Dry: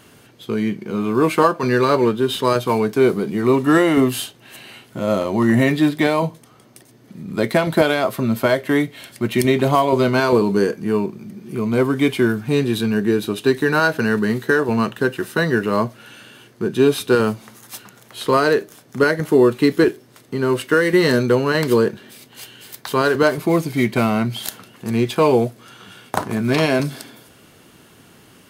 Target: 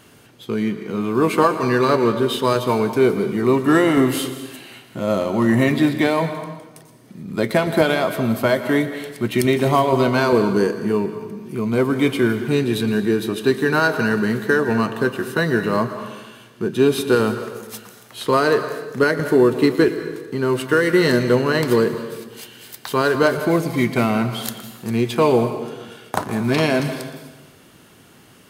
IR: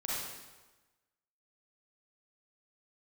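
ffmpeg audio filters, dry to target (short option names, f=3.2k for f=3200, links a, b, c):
-filter_complex "[0:a]asplit=2[a][b];[1:a]atrim=start_sample=2205,adelay=116[c];[b][c]afir=irnorm=-1:irlink=0,volume=-13.5dB[d];[a][d]amix=inputs=2:normalize=0,volume=-1dB"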